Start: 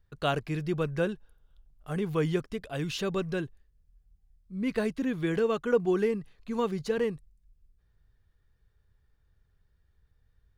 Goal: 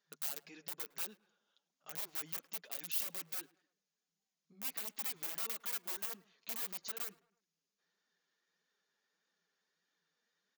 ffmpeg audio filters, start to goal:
-filter_complex "[0:a]acompressor=threshold=-42dB:ratio=4,asoftclip=type=tanh:threshold=-33.5dB,asettb=1/sr,asplit=3[a][b][c];[a]atrim=end=2.954[d];[b]atrim=start=2.95:end=3.41,asetpts=PTS-STARTPTS,afade=t=in:d=0.004:c=qsin,afade=t=out:st=0.456:d=0.004:c=qsin,aecho=1:1:3.7:0.7,atrim=end_sample=20286[e];[c]atrim=start=3.406[f];[d][e]acrossfade=d=0.004:c1=hsin:c2=qsin[g];[g][f]acrossfade=d=0.004:c1=qsin:c2=hsin,afftfilt=real='re*between(b*sr/4096,160,7100)':imag='im*between(b*sr/4096,160,7100)':win_size=4096:overlap=0.75,aeval=exprs='(mod(79.4*val(0)+1,2)-1)/79.4':c=same,alimiter=level_in=18dB:limit=-24dB:level=0:latency=1:release=12,volume=-18dB,aemphasis=mode=production:type=riaa,asplit=2[h][i];[i]adelay=107,lowpass=f=2.5k:p=1,volume=-21dB,asplit=2[j][k];[k]adelay=107,lowpass=f=2.5k:p=1,volume=0.47,asplit=2[l][m];[m]adelay=107,lowpass=f=2.5k:p=1,volume=0.47[n];[j][l][n]amix=inputs=3:normalize=0[o];[h][o]amix=inputs=2:normalize=0,flanger=delay=3.2:depth=6.2:regen=-2:speed=1.6:shape=triangular"

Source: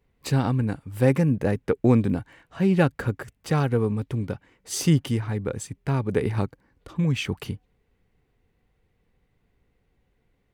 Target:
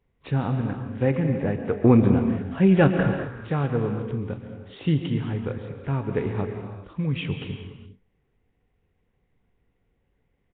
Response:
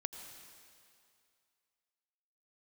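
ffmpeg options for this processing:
-filter_complex "[0:a]asettb=1/sr,asplit=3[a][b][c];[a]atrim=end=1.734[d];[b]atrim=start=1.73:end=3.07,asetpts=PTS-STARTPTS,afade=t=in:d=0.004:c=qsin,afade=t=out:st=1.336:d=0.004:c=qsin,acontrast=53[e];[c]atrim=start=3.066[f];[d][e]acrossfade=d=0.004:c1=hsin:c2=qsin[g];[g][f]acrossfade=d=0.004:c1=qsin:c2=hsin,aecho=1:1:21|43:0.15|0.15[h];[1:a]atrim=start_sample=2205,afade=t=out:st=0.36:d=0.01,atrim=end_sample=16317,asetrate=32634,aresample=44100[i];[h][i]afir=irnorm=-1:irlink=0,volume=-2dB" -ar 8000 -c:a nellymoser

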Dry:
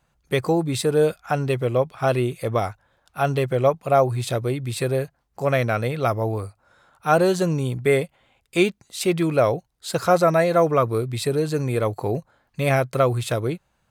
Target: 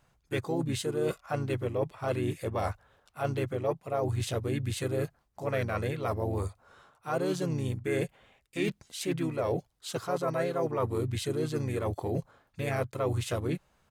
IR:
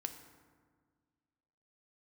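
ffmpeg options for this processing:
-filter_complex "[0:a]areverse,acompressor=threshold=-29dB:ratio=5,areverse,asplit=2[a][b];[b]asetrate=35002,aresample=44100,atempo=1.25992,volume=-4dB[c];[a][c]amix=inputs=2:normalize=0,volume=-1dB"

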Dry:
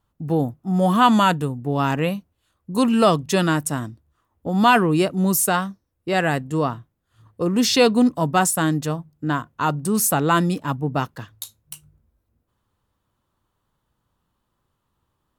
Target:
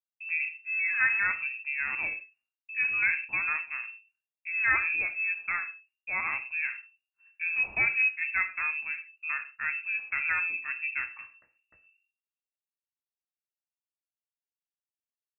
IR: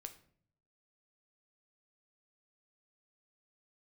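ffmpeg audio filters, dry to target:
-filter_complex "[0:a]agate=range=-33dB:threshold=-50dB:ratio=3:detection=peak[a];[1:a]atrim=start_sample=2205,atrim=end_sample=6174[b];[a][b]afir=irnorm=-1:irlink=0,lowpass=f=2.4k:t=q:w=0.5098,lowpass=f=2.4k:t=q:w=0.6013,lowpass=f=2.4k:t=q:w=0.9,lowpass=f=2.4k:t=q:w=2.563,afreqshift=-2800,volume=-5.5dB"

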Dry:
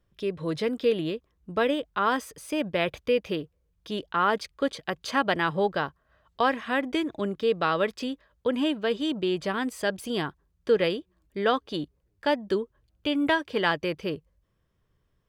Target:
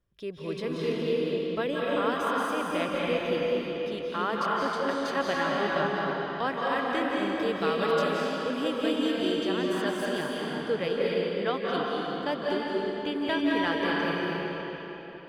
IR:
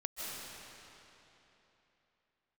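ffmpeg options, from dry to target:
-filter_complex "[0:a]asettb=1/sr,asplit=3[a][b][c];[a]atrim=end=7.164[d];[b]atrim=start=7.16:end=9.32,asetpts=PTS-STARTPTS,afade=t=in:d=0.004:c=qsin,afade=t=out:st=2.156:d=0.004:c=qsin,highshelf=f=5.4k:g=8.5[e];[c]atrim=start=9.316[f];[d][e]acrossfade=d=0.004:c1=hsin:c2=qsin[g];[g][f]acrossfade=d=0.004:c1=qsin:c2=hsin[h];[1:a]atrim=start_sample=2205,asetrate=38808,aresample=44100[i];[h][i]afir=irnorm=-1:irlink=0,volume=-4dB"

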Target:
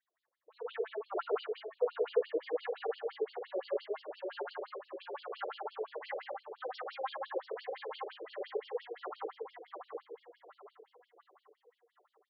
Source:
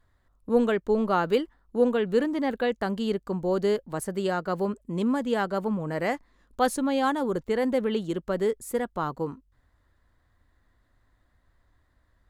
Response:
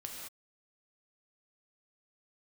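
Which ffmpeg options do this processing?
-filter_complex "[0:a]flanger=delay=2.5:depth=2.4:regen=30:speed=0.78:shape=triangular,aecho=1:1:731|1462|2193|2924|3655:0.501|0.216|0.0927|0.0398|0.0171[a];[1:a]atrim=start_sample=2205,asetrate=38808,aresample=44100[b];[a][b]afir=irnorm=-1:irlink=0,afftfilt=real='re*between(b*sr/1024,440*pow(4000/440,0.5+0.5*sin(2*PI*5.8*pts/sr))/1.41,440*pow(4000/440,0.5+0.5*sin(2*PI*5.8*pts/sr))*1.41)':imag='im*between(b*sr/1024,440*pow(4000/440,0.5+0.5*sin(2*PI*5.8*pts/sr))/1.41,440*pow(4000/440,0.5+0.5*sin(2*PI*5.8*pts/sr))*1.41)':win_size=1024:overlap=0.75,volume=-1dB"

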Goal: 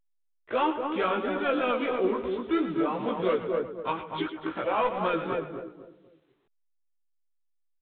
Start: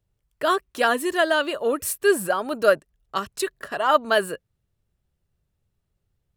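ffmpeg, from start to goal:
-filter_complex "[0:a]asoftclip=type=tanh:threshold=-15dB,bandreject=f=60:t=h:w=6,bandreject=f=120:t=h:w=6,bandreject=f=180:t=h:w=6,bandreject=f=240:t=h:w=6,acrusher=bits=6:mix=0:aa=0.000001,asplit=2[a][b];[b]aecho=0:1:90:0.251[c];[a][c]amix=inputs=2:normalize=0,asetrate=35897,aresample=44100,asplit=2[d][e];[e]adelay=247,lowpass=f=860:p=1,volume=-3.5dB,asplit=2[f][g];[g]adelay=247,lowpass=f=860:p=1,volume=0.34,asplit=2[h][i];[i]adelay=247,lowpass=f=860:p=1,volume=0.34,asplit=2[j][k];[k]adelay=247,lowpass=f=860:p=1,volume=0.34[l];[f][h][j][l]amix=inputs=4:normalize=0[m];[d][m]amix=inputs=2:normalize=0,asplit=2[n][o];[o]asetrate=55563,aresample=44100,atempo=0.793701,volume=-11dB[p];[n][p]amix=inputs=2:normalize=0,alimiter=limit=-15dB:level=0:latency=1:release=187,flanger=delay=15.5:depth=2.8:speed=3" -ar 8000 -c:a pcm_alaw

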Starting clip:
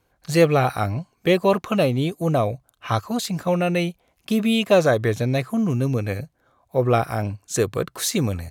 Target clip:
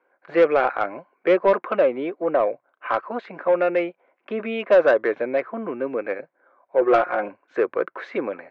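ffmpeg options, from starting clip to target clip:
-filter_complex "[0:a]highpass=f=300:w=0.5412,highpass=f=300:w=1.3066,equalizer=f=360:t=q:w=4:g=3,equalizer=f=550:t=q:w=4:g=7,equalizer=f=980:t=q:w=4:g=5,equalizer=f=1.5k:t=q:w=4:g=7,equalizer=f=2.2k:t=q:w=4:g=5,lowpass=f=2.2k:w=0.5412,lowpass=f=2.2k:w=1.3066,asettb=1/sr,asplit=3[a][b][c];[a]atrim=end=6.814[d];[b]atrim=start=6.81:end=7.29,asetpts=PTS-STARTPTS,afade=t=in:d=0.004:c=qsin,afade=t=out:st=0.476:d=0.004:c=qsin,aecho=1:1:5.6:0.79,atrim=end_sample=21168[e];[c]atrim=start=7.286[f];[d][e]acrossfade=d=0.004:c1=hsin:c2=qsin[g];[g][f]acrossfade=d=0.004:c1=qsin:c2=hsin,acontrast=55,volume=-7.5dB"

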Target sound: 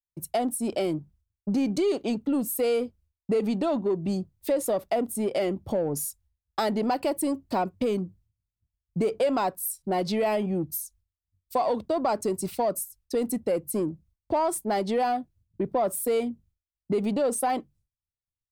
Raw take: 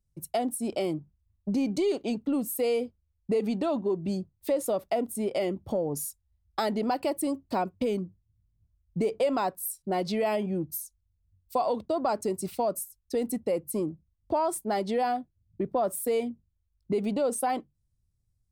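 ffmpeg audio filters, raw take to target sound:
-filter_complex "[0:a]agate=range=-33dB:threshold=-56dB:ratio=3:detection=peak,asplit=2[a][b];[b]asoftclip=type=tanh:threshold=-30dB,volume=-5.5dB[c];[a][c]amix=inputs=2:normalize=0"

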